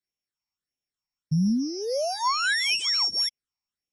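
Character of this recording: a buzz of ramps at a fixed pitch in blocks of 8 samples; phasing stages 8, 1.6 Hz, lowest notch 440–1400 Hz; AAC

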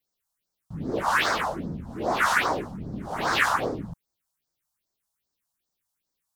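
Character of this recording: phasing stages 4, 2.5 Hz, lowest notch 340–2800 Hz

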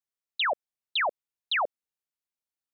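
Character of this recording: noise floor -94 dBFS; spectral tilt +3.0 dB/octave

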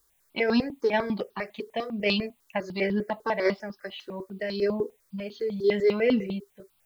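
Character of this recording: a quantiser's noise floor 12-bit, dither triangular; notches that jump at a steady rate 10 Hz 670–2100 Hz

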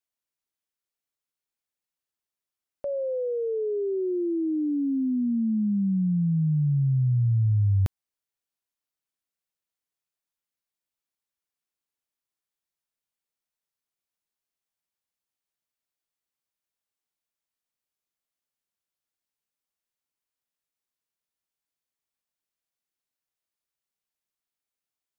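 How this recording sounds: noise floor -91 dBFS; spectral tilt -6.0 dB/octave

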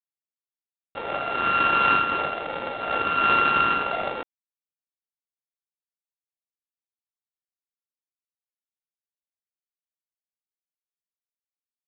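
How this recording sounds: a buzz of ramps at a fixed pitch in blocks of 32 samples; tremolo triangle 2.8 Hz, depth 35%; G.726

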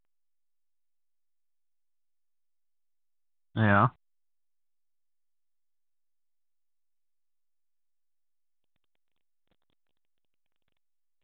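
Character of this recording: phasing stages 4, 0.23 Hz, lowest notch 410–1900 Hz; a quantiser's noise floor 12-bit, dither none; A-law

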